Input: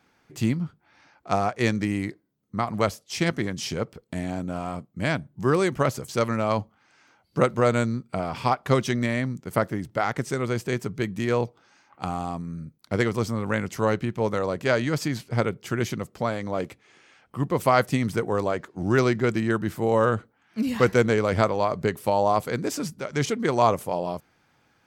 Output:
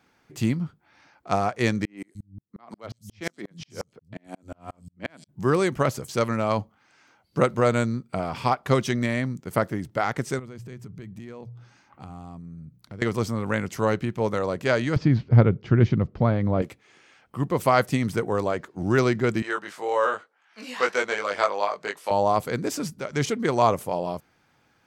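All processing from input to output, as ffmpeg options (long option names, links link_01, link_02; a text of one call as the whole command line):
ffmpeg -i in.wav -filter_complex "[0:a]asettb=1/sr,asplit=3[link_01][link_02][link_03];[link_01]atrim=end=1.854[link_04];[link_02]atrim=start=1.85:end=5.29,asetpts=PTS-STARTPTS,afade=type=in:duration=0.004:curve=qsin,afade=type=out:start_time=3.436:duration=0.004:curve=qsin,acrossover=split=180|5200[link_05][link_06][link_07];[link_07]adelay=120[link_08];[link_05]adelay=300[link_09];[link_09][link_06][link_08]amix=inputs=3:normalize=0,atrim=end_sample=151704,asoftclip=type=hard:threshold=-12.5dB,aeval=exprs='val(0)*pow(10,-40*if(lt(mod(-5.6*n/s,1),2*abs(-5.6)/1000),1-mod(-5.6*n/s,1)/(2*abs(-5.6)/1000),(mod(-5.6*n/s,1)-2*abs(-5.6)/1000)/(1-2*abs(-5.6)/1000))/20)':channel_layout=same[link_10];[link_03]atrim=start=5.286[link_11];[link_04][link_10]acrossfade=duration=0.004:curve1=hsin:curve2=qsin[link_12];[link_12][link_11]acrossfade=duration=0.004:curve1=qsin:curve2=hsin,asettb=1/sr,asplit=3[link_13][link_14][link_15];[link_13]atrim=end=10.394[link_16];[link_14]atrim=start=10.39:end=13.02,asetpts=PTS-STARTPTS,afade=type=in:duration=0.004:curve=qsin,afade=type=out:start_time=2.626:duration=0.004:curve=qsin,bass=frequency=250:gain=10,treble=frequency=4000:gain=-1,bandreject=frequency=60:width_type=h:width=6,bandreject=frequency=120:width_type=h:width=6,bandreject=frequency=180:width_type=h:width=6,acompressor=threshold=-40dB:ratio=4:attack=3.2:release=140:knee=1:detection=peak[link_17];[link_15]atrim=start=13.016[link_18];[link_16][link_17]acrossfade=duration=0.004:curve1=hsin:curve2=qsin[link_19];[link_19][link_18]acrossfade=duration=0.004:curve1=qsin:curve2=hsin,asettb=1/sr,asplit=3[link_20][link_21][link_22];[link_20]atrim=end=14.964[link_23];[link_21]atrim=start=14.96:end=16.62,asetpts=PTS-STARTPTS,afade=type=in:duration=0.004:curve=qsin,afade=type=out:start_time=1.656:duration=0.004:curve=qsin,lowpass=frequency=5400:width=0.5412,lowpass=frequency=5400:width=1.3066,aemphasis=mode=reproduction:type=riaa[link_24];[link_22]atrim=start=16.616[link_25];[link_23][link_24]acrossfade=duration=0.004:curve1=hsin:curve2=qsin[link_26];[link_26][link_25]acrossfade=duration=0.004:curve1=qsin:curve2=hsin,asettb=1/sr,asplit=3[link_27][link_28][link_29];[link_27]atrim=end=19.424[link_30];[link_28]atrim=start=19.42:end=22.11,asetpts=PTS-STARTPTS,afade=type=in:duration=0.004:curve=qsin,afade=type=out:start_time=2.686:duration=0.004:curve=qsin,highpass=680,lowpass=7700,asplit=2[link_31][link_32];[link_32]adelay=20,volume=-3dB[link_33];[link_31][link_33]amix=inputs=2:normalize=0,atrim=end_sample=118629[link_34];[link_29]atrim=start=22.106[link_35];[link_30][link_34]acrossfade=duration=0.004:curve1=hsin:curve2=qsin[link_36];[link_36][link_35]acrossfade=duration=0.004:curve1=qsin:curve2=hsin" out.wav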